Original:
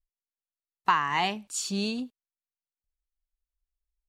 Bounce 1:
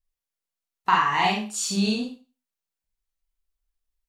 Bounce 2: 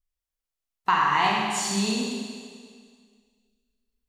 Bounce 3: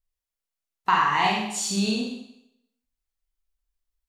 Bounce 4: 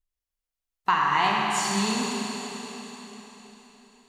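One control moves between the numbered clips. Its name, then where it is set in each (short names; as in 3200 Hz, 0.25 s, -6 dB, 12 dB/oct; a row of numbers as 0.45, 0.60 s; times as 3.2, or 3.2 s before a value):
Schroeder reverb, RT60: 0.34, 1.9, 0.77, 4.1 s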